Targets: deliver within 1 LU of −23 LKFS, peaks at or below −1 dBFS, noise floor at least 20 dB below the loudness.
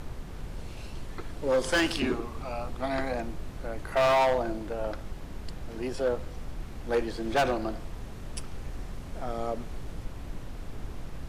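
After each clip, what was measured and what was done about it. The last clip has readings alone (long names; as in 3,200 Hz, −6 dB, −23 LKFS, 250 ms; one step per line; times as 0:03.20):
share of clipped samples 1.5%; peaks flattened at −20.0 dBFS; background noise floor −41 dBFS; target noise floor −51 dBFS; integrated loudness −30.5 LKFS; sample peak −20.0 dBFS; target loudness −23.0 LKFS
→ clipped peaks rebuilt −20 dBFS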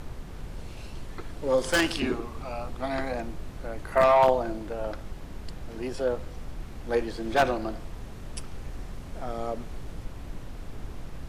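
share of clipped samples 0.0%; background noise floor −41 dBFS; target noise floor −48 dBFS
→ noise reduction from a noise print 7 dB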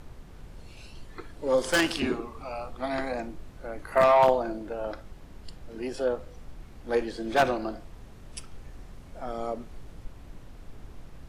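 background noise floor −48 dBFS; integrated loudness −27.5 LKFS; sample peak −10.5 dBFS; target loudness −23.0 LKFS
→ level +4.5 dB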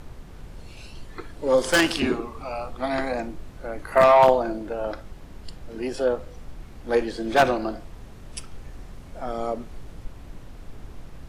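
integrated loudness −23.0 LKFS; sample peak −6.0 dBFS; background noise floor −43 dBFS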